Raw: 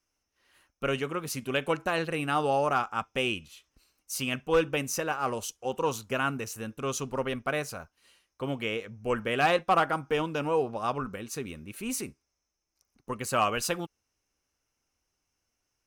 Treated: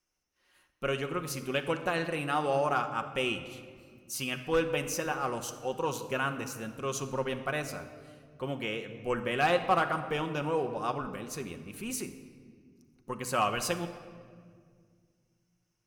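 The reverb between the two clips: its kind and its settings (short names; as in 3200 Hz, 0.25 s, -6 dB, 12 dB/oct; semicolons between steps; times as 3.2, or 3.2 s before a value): shoebox room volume 3300 m³, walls mixed, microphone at 0.96 m; gain -3 dB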